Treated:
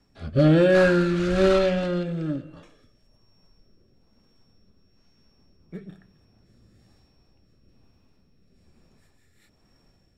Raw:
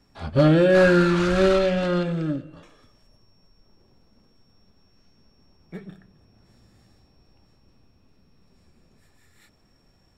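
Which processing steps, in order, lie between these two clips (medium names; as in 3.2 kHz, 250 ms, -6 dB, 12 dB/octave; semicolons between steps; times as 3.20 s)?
rotary cabinet horn 1.1 Hz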